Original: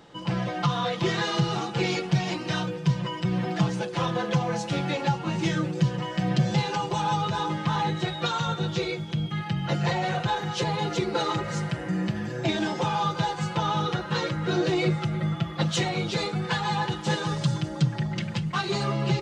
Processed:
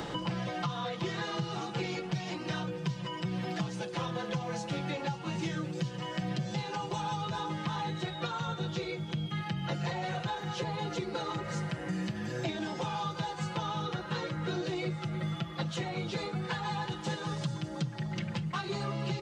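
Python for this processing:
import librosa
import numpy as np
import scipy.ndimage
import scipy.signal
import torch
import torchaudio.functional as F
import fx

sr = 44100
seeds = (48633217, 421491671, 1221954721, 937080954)

y = fx.band_squash(x, sr, depth_pct=100)
y = y * 10.0 ** (-9.0 / 20.0)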